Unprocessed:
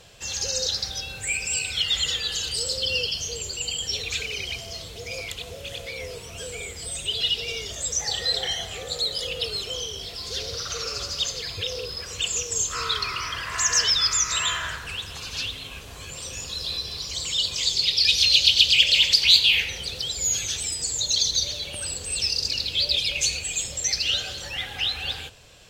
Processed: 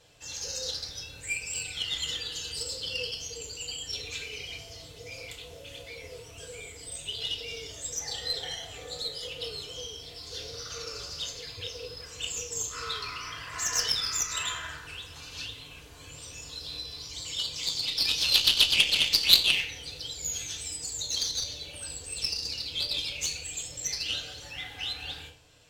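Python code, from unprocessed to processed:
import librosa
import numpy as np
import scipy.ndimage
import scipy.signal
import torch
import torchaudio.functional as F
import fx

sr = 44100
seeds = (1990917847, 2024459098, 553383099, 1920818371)

y = fx.rev_fdn(x, sr, rt60_s=0.43, lf_ratio=1.0, hf_ratio=0.8, size_ms=20.0, drr_db=-1.0)
y = fx.cheby_harmonics(y, sr, harmonics=(3, 4, 5, 7), levels_db=(-12, -29, -27, -36), full_scale_db=-1.5)
y = y * 10.0 ** (-3.0 / 20.0)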